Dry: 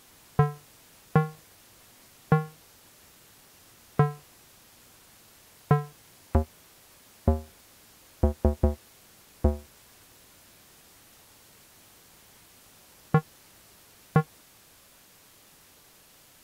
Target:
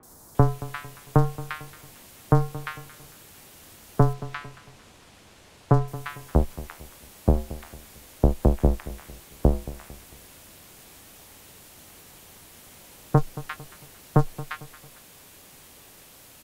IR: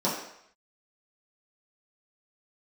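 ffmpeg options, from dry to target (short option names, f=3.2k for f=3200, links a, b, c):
-filter_complex "[0:a]aeval=exprs='clip(val(0),-1,0.0335)':c=same,asettb=1/sr,asplit=3[a][b][c];[a]atrim=end=4.104[d];[b]atrim=start=4.1:end=5.85,asetpts=PTS-STARTPTS,afade=t=in:d=0.004:c=qsin,afade=t=out:st=1.746:d=0.004:c=qsin,adynamicsmooth=sensitivity=7.5:basefreq=6.9k[e];[c]atrim=start=5.846[f];[d][e]acrossfade=d=0.004:c1=hsin:c2=qsin[g];[g][f]acrossfade=d=0.004:c1=qsin:c2=hsin,acrossover=split=1400|5000[h][i][j];[j]adelay=30[k];[i]adelay=350[l];[h][l][k]amix=inputs=3:normalize=0,afreqshift=-15,asplit=2[m][n];[n]aecho=0:1:225|450|675:0.141|0.0551|0.0215[o];[m][o]amix=inputs=2:normalize=0,volume=7dB"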